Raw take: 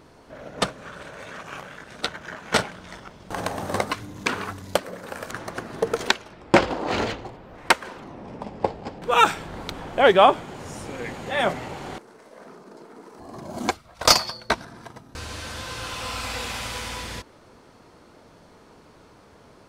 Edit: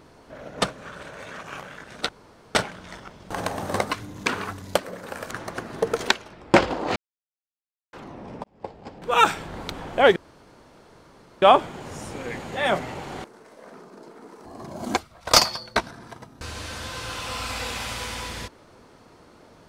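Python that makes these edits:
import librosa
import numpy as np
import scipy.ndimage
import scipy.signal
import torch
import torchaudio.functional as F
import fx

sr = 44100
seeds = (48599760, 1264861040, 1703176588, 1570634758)

y = fx.edit(x, sr, fx.room_tone_fill(start_s=2.09, length_s=0.46),
    fx.silence(start_s=6.96, length_s=0.97),
    fx.fade_in_span(start_s=8.44, length_s=0.84),
    fx.insert_room_tone(at_s=10.16, length_s=1.26), tone=tone)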